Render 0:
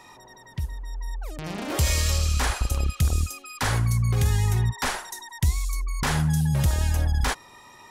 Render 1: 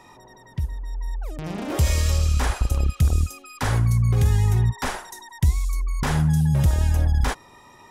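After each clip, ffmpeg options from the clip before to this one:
ffmpeg -i in.wav -af "tiltshelf=frequency=970:gain=3.5,bandreject=frequency=4300:width=23" out.wav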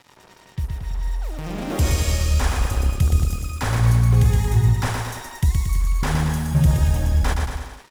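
ffmpeg -i in.wav -af "acrusher=bits=6:mix=0:aa=0.5,aecho=1:1:120|228|325.2|412.7|491.4:0.631|0.398|0.251|0.158|0.1" out.wav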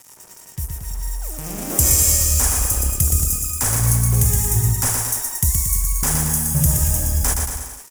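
ffmpeg -i in.wav -af "aexciter=amount=12.2:drive=3:freq=5800,volume=-2dB" out.wav

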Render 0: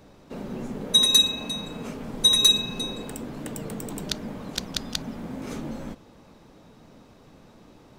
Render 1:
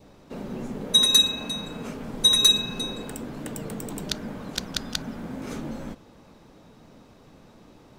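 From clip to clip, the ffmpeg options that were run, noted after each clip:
ffmpeg -i in.wav -af "adynamicequalizer=threshold=0.00355:dfrequency=1500:dqfactor=4:tfrequency=1500:tqfactor=4:attack=5:release=100:ratio=0.375:range=3:mode=boostabove:tftype=bell" out.wav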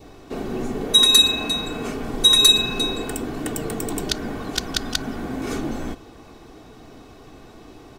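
ffmpeg -i in.wav -filter_complex "[0:a]aecho=1:1:2.7:0.53,asplit=2[link_01][link_02];[link_02]alimiter=limit=-17dB:level=0:latency=1:release=93,volume=-2dB[link_03];[link_01][link_03]amix=inputs=2:normalize=0,volume=2dB" out.wav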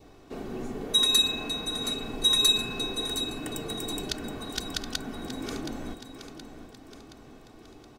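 ffmpeg -i in.wav -af "aecho=1:1:722|1444|2166|2888|3610:0.299|0.149|0.0746|0.0373|0.0187,volume=-8.5dB" out.wav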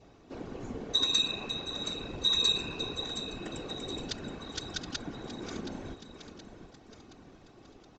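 ffmpeg -i in.wav -af "aresample=16000,aresample=44100,afftfilt=real='hypot(re,im)*cos(2*PI*random(0))':imag='hypot(re,im)*sin(2*PI*random(1))':win_size=512:overlap=0.75,volume=1.5dB" out.wav

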